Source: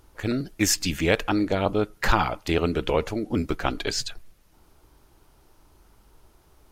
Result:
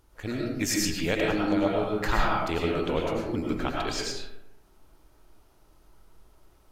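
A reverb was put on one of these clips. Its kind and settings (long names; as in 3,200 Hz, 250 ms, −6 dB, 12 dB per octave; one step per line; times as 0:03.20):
comb and all-pass reverb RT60 0.93 s, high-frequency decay 0.5×, pre-delay 65 ms, DRR −2.5 dB
level −7 dB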